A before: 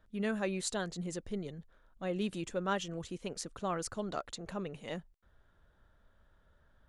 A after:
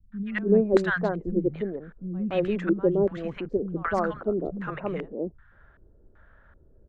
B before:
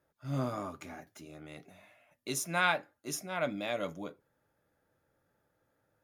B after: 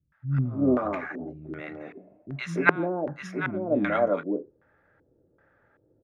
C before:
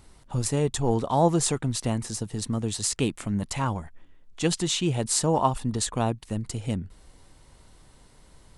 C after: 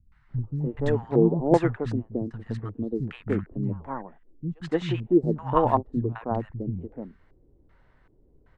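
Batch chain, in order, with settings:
three-band delay without the direct sound lows, highs, mids 120/290 ms, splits 200/1,000 Hz
auto-filter low-pass square 1.3 Hz 380–1,700 Hz
expander for the loud parts 1.5 to 1, over −37 dBFS
loudness normalisation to −27 LKFS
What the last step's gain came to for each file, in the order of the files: +14.5, +15.0, +4.0 decibels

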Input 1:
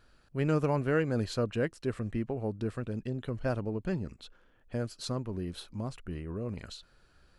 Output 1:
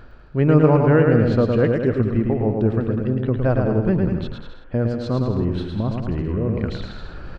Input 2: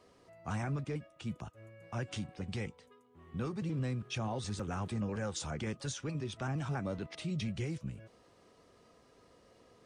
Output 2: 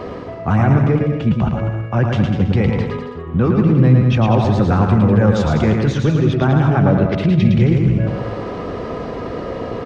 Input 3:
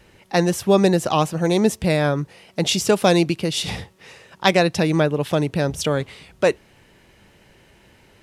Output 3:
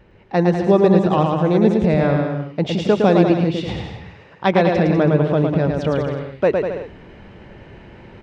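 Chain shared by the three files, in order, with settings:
reversed playback
upward compression, threshold −33 dBFS
reversed playback
head-to-tape spacing loss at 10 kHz 35 dB
bouncing-ball delay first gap 110 ms, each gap 0.8×, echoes 5
normalise the peak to −1.5 dBFS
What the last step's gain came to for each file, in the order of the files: +13.0, +22.0, +2.5 decibels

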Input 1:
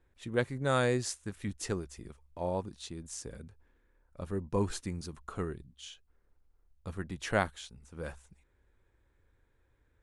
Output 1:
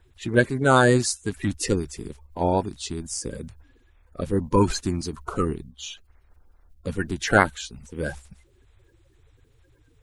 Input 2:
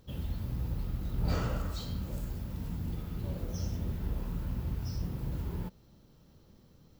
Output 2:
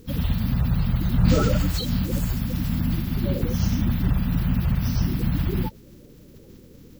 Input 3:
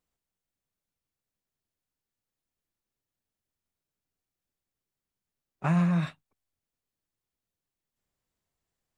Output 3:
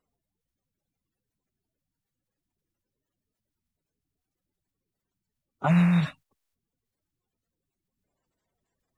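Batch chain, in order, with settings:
spectral magnitudes quantised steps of 30 dB
loudness normalisation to −24 LKFS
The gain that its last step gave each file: +12.0, +13.0, +4.5 decibels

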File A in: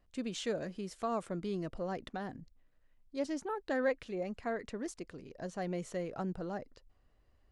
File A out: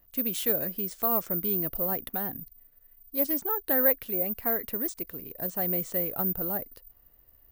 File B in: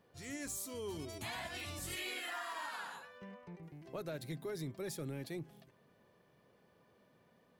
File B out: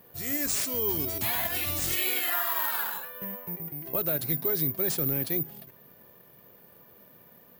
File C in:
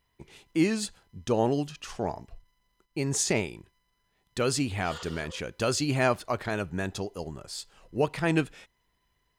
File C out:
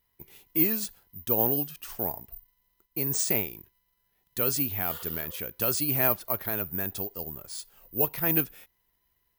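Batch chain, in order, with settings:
bad sample-rate conversion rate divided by 3×, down none, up zero stuff
loudness normalisation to −27 LKFS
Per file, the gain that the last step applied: +4.0, +9.5, −4.5 decibels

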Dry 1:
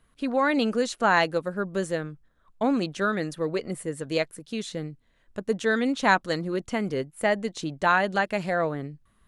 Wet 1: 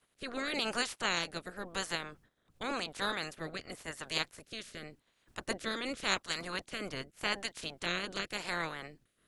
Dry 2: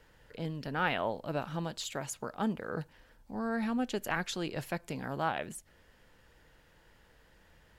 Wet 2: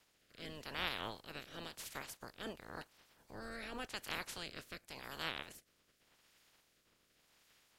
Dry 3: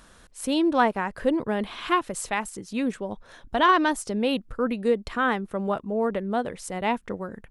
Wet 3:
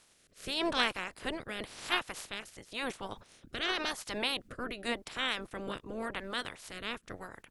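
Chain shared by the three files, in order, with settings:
ceiling on every frequency bin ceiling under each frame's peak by 29 dB
rotating-speaker cabinet horn 0.9 Hz
level −8 dB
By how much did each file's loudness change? −10.0, −9.5, −10.0 LU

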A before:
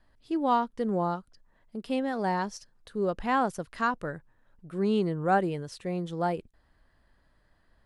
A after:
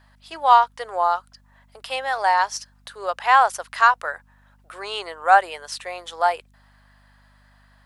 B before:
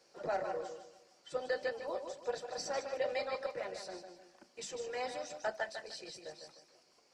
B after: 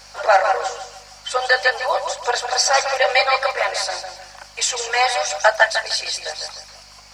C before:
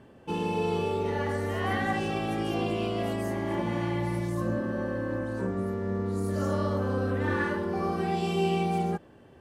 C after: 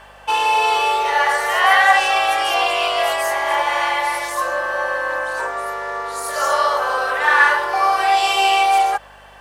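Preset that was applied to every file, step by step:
inverse Chebyshev high-pass filter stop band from 160 Hz, stop band 70 dB
mains hum 50 Hz, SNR 34 dB
normalise the peak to −1.5 dBFS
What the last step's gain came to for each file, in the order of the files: +13.0, +25.5, +19.5 decibels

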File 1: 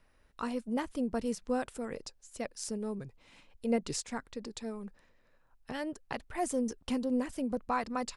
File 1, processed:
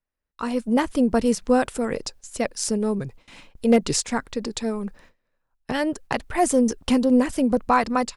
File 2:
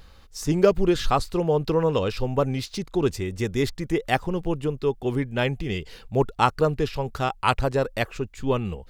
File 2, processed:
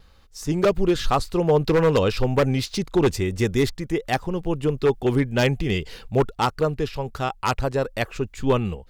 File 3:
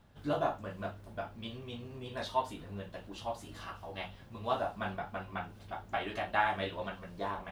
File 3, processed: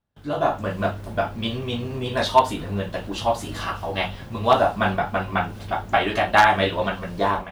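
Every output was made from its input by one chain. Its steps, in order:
noise gate with hold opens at −50 dBFS
automatic gain control gain up to 14 dB
wave folding −7 dBFS
loudness normalisation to −23 LKFS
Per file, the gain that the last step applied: −0.5, −4.0, +2.5 decibels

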